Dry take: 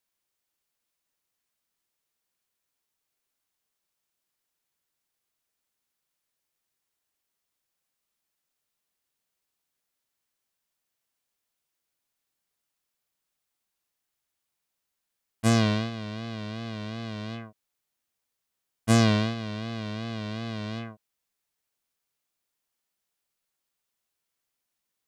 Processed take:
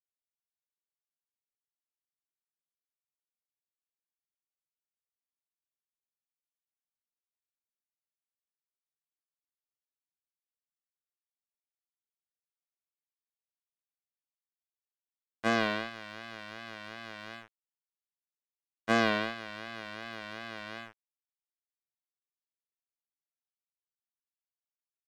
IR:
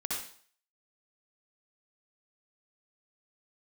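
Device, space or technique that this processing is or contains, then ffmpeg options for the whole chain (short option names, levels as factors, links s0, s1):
pocket radio on a weak battery: -af "highpass=340,lowpass=3100,aeval=exprs='sgn(val(0))*max(abs(val(0))-0.00841,0)':c=same,equalizer=f=1600:t=o:w=0.47:g=4.5"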